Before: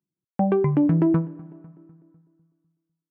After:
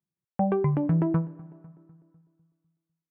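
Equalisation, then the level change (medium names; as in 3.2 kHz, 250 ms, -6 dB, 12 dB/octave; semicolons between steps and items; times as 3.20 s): peaking EQ 290 Hz -9 dB 0.95 oct; treble shelf 2.4 kHz -10 dB; 0.0 dB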